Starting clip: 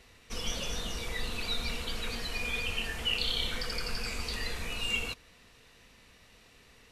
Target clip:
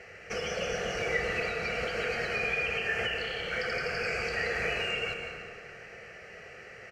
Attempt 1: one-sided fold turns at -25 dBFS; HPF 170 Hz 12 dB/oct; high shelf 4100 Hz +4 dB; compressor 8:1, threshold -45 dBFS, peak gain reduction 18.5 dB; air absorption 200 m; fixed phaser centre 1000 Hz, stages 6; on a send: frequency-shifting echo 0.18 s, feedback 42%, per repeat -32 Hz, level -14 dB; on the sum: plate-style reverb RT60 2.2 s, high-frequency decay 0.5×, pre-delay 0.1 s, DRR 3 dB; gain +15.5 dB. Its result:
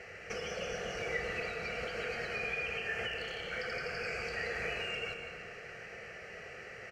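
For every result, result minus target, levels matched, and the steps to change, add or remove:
one-sided fold: distortion +37 dB; compressor: peak gain reduction +5.5 dB
change: one-sided fold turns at -19 dBFS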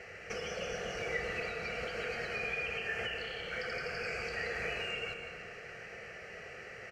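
compressor: peak gain reduction +6 dB
change: compressor 8:1, threshold -38 dBFS, peak gain reduction 13 dB

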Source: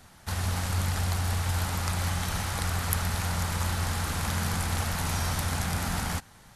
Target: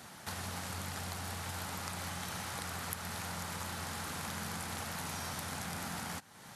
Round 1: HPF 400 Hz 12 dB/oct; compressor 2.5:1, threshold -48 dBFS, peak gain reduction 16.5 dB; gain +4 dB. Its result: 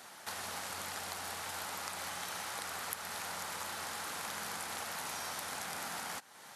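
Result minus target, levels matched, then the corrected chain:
125 Hz band -14.0 dB
HPF 150 Hz 12 dB/oct; compressor 2.5:1, threshold -48 dBFS, peak gain reduction 16.5 dB; gain +4 dB

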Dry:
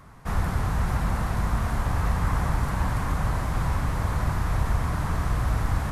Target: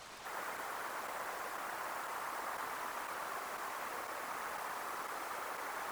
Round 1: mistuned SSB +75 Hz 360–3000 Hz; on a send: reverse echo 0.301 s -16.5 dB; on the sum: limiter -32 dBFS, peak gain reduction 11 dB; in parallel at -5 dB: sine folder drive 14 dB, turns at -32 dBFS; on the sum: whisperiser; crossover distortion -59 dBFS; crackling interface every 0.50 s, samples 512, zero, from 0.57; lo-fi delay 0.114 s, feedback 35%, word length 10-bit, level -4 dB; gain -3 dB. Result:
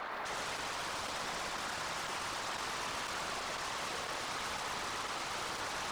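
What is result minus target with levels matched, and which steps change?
sine folder: distortion -18 dB
change: sine folder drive 14 dB, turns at -42.5 dBFS

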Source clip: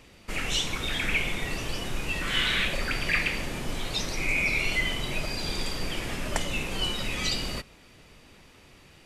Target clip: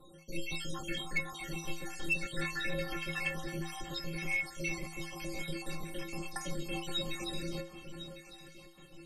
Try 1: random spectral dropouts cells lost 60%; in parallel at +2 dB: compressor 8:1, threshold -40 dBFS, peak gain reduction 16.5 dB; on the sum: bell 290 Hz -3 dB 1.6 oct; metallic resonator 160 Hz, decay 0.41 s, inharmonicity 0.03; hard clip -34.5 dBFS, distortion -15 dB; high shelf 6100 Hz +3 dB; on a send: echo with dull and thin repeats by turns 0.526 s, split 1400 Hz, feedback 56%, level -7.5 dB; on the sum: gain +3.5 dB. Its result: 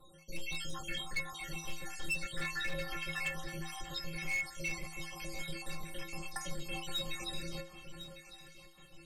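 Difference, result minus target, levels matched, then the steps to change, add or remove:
hard clip: distortion +14 dB; 250 Hz band -4.5 dB
change: bell 290 Hz +5.5 dB 1.6 oct; change: hard clip -28 dBFS, distortion -29 dB

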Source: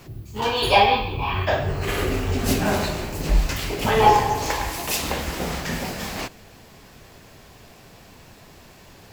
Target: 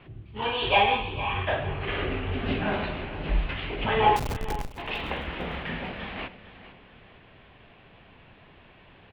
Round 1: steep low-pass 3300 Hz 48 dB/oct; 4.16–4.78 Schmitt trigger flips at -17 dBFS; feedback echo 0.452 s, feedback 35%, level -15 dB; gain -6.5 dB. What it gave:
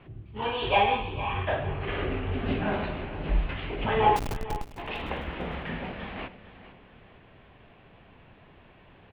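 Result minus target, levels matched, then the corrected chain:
4000 Hz band -3.5 dB
steep low-pass 3300 Hz 48 dB/oct; high shelf 2100 Hz +7 dB; 4.16–4.78 Schmitt trigger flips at -17 dBFS; feedback echo 0.452 s, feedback 35%, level -15 dB; gain -6.5 dB

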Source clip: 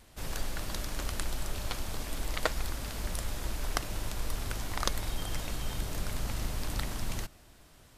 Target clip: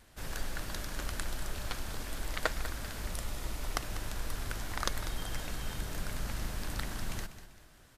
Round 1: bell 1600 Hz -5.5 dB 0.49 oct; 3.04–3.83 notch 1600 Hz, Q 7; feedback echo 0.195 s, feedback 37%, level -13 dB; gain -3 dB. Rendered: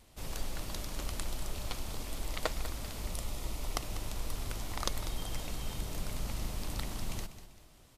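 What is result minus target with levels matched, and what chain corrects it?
2000 Hz band -5.0 dB
bell 1600 Hz +5 dB 0.49 oct; 3.04–3.83 notch 1600 Hz, Q 7; feedback echo 0.195 s, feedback 37%, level -13 dB; gain -3 dB

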